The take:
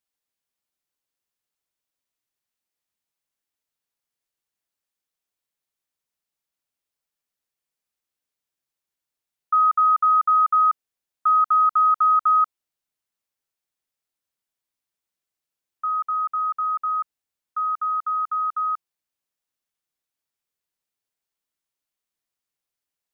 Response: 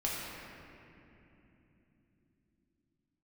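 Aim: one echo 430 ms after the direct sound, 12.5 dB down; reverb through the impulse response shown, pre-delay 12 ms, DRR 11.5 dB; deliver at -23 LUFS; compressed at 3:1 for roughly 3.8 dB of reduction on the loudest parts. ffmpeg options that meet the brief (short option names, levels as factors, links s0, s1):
-filter_complex "[0:a]acompressor=threshold=0.1:ratio=3,aecho=1:1:430:0.237,asplit=2[s0][s1];[1:a]atrim=start_sample=2205,adelay=12[s2];[s1][s2]afir=irnorm=-1:irlink=0,volume=0.133[s3];[s0][s3]amix=inputs=2:normalize=0,volume=0.944"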